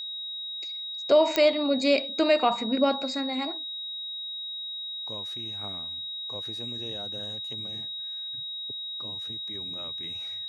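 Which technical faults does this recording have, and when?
whistle 3,800 Hz −33 dBFS
0:01.36: click −9 dBFS

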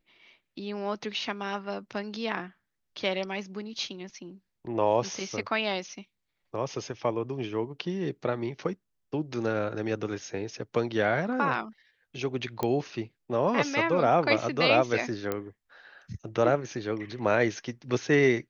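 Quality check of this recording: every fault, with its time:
0:12.63: click −15 dBFS
0:15.32: click −16 dBFS

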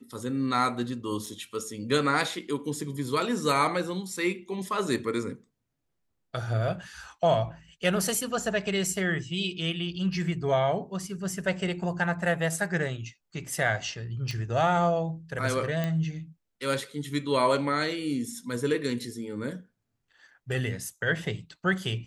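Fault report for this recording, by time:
0:01.26: drop-out 5 ms
0:14.31: click
0:15.84: click −17 dBFS

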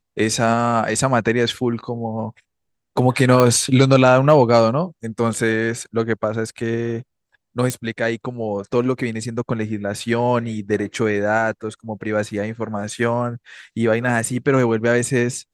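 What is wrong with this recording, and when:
0:03.40: click −3 dBFS
0:07.70: click −8 dBFS

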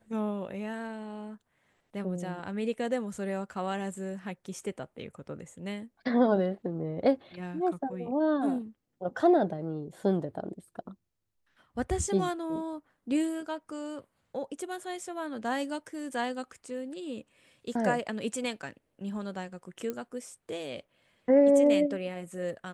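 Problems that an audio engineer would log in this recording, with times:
0:19.90: click −21 dBFS

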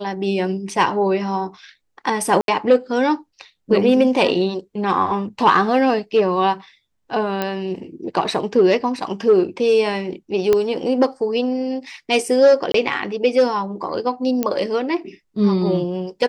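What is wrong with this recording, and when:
0:02.41–0:02.48: drop-out 72 ms
0:07.42: click −9 dBFS
0:10.53: click −5 dBFS
0:12.72–0:12.74: drop-out 23 ms
0:14.43: click −7 dBFS

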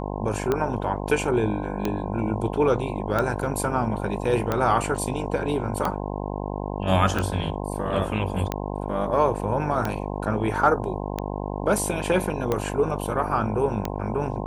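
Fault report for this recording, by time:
mains buzz 50 Hz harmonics 21 −30 dBFS
scratch tick 45 rpm −11 dBFS

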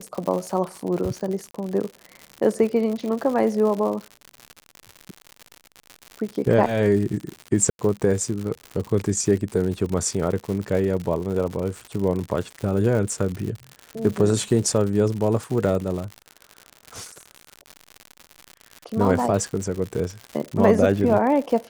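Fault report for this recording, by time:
surface crackle 120 per second −28 dBFS
0:01.51–0:01.54: drop-out 34 ms
0:07.70–0:07.79: drop-out 91 ms

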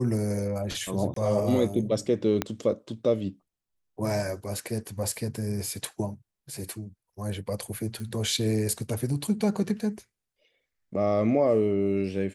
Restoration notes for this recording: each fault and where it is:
0:01.14–0:01.16: drop-out 23 ms
0:02.42: click −11 dBFS
0:08.00: click

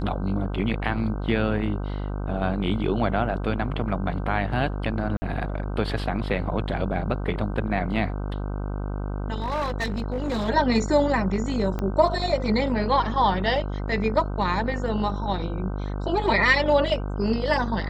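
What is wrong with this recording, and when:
mains buzz 50 Hz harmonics 31 −29 dBFS
0:05.17–0:05.22: drop-out 50 ms
0:09.38–0:10.50: clipping −22.5 dBFS
0:11.79: click −16 dBFS

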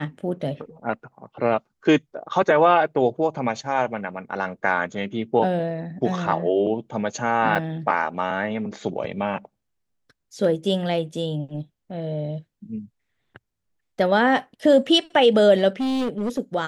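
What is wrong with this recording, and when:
0:07.55–0:07.56: drop-out 5.2 ms
0:15.80–0:16.39: clipping −21 dBFS

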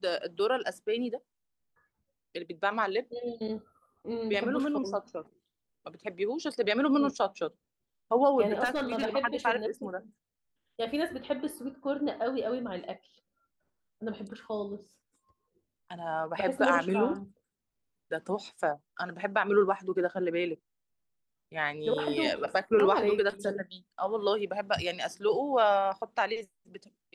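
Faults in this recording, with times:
0:08.64–0:09.06: clipping −26 dBFS

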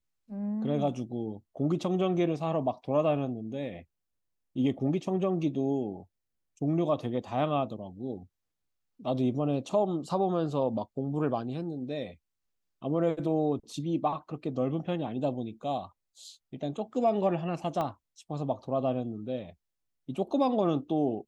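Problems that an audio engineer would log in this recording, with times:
0:17.81: click −20 dBFS

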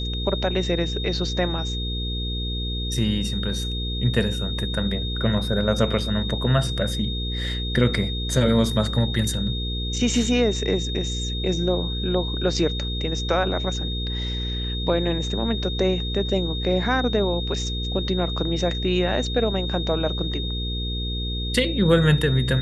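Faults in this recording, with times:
mains hum 60 Hz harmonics 8 −28 dBFS
whistle 3,700 Hz −30 dBFS

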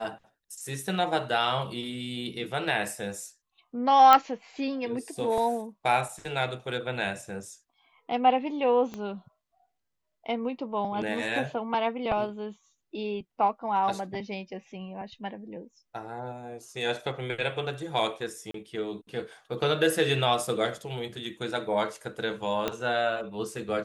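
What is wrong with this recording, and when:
0:04.13: click −6 dBFS
0:08.94: click −23 dBFS
0:18.51–0:18.54: drop-out 33 ms
0:22.68: click −13 dBFS

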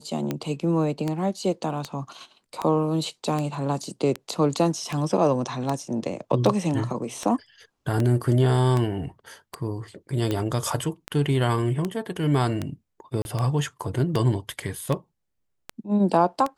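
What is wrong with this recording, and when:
scratch tick 78 rpm −13 dBFS
0:13.22–0:13.25: drop-out 31 ms

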